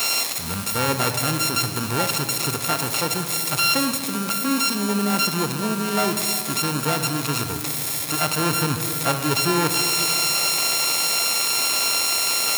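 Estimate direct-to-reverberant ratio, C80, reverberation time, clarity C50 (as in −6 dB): 6.5 dB, 8.0 dB, 2.7 s, 7.0 dB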